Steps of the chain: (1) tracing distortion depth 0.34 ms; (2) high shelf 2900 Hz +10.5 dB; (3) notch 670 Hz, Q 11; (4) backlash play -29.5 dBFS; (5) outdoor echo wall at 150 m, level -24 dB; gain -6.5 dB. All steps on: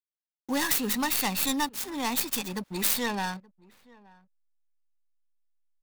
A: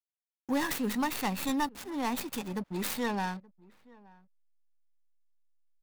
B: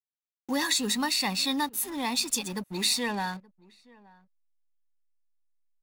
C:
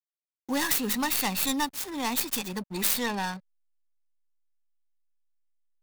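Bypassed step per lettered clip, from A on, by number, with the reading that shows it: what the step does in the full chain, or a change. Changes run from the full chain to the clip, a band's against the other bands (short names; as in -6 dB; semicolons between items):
2, 8 kHz band -9.5 dB; 1, crest factor change -3.0 dB; 5, echo-to-direct -26.5 dB to none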